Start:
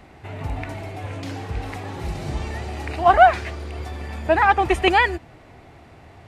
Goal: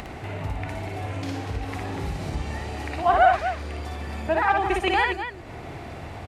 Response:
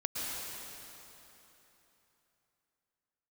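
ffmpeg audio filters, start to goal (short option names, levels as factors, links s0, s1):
-af "acompressor=mode=upward:threshold=0.112:ratio=2.5,aecho=1:1:58.31|242:0.708|0.355,volume=0.473"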